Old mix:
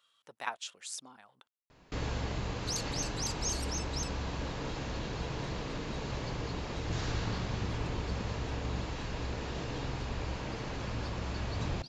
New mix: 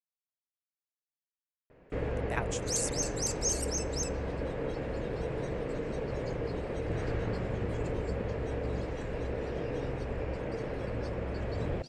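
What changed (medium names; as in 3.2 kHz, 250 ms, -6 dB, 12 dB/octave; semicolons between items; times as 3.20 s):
speech: entry +1.90 s; first sound: add distance through air 380 m; master: add graphic EQ 500/1000/2000/4000/8000 Hz +11/-5/+5/-9/+11 dB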